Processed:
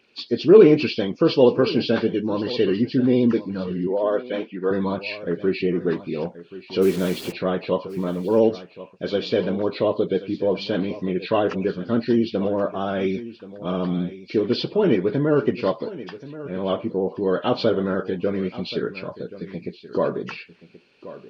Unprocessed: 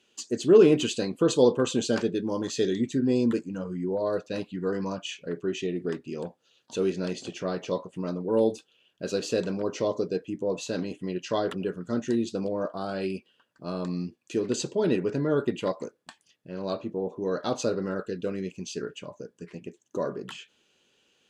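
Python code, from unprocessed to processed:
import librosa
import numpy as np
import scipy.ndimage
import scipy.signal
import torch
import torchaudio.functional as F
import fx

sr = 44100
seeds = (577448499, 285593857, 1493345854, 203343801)

p1 = fx.freq_compress(x, sr, knee_hz=1900.0, ratio=1.5)
p2 = fx.rider(p1, sr, range_db=4, speed_s=2.0)
p3 = p1 + (p2 * 10.0 ** (-0.5 / 20.0))
p4 = fx.quant_dither(p3, sr, seeds[0], bits=6, dither='none', at=(6.81, 7.31), fade=0.02)
p5 = p4 + fx.echo_single(p4, sr, ms=1079, db=-16.0, dry=0)
p6 = fx.vibrato(p5, sr, rate_hz=15.0, depth_cents=44.0)
y = fx.bandpass_edges(p6, sr, low_hz=300.0, high_hz=3900.0, at=(3.87, 4.71))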